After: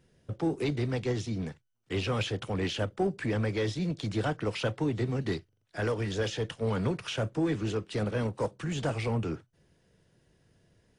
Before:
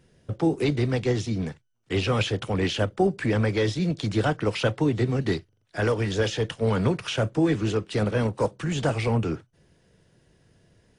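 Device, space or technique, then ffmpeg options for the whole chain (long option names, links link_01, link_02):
parallel distortion: -filter_complex "[0:a]asplit=2[link_01][link_02];[link_02]asoftclip=type=hard:threshold=-22.5dB,volume=-7.5dB[link_03];[link_01][link_03]amix=inputs=2:normalize=0,volume=-8.5dB"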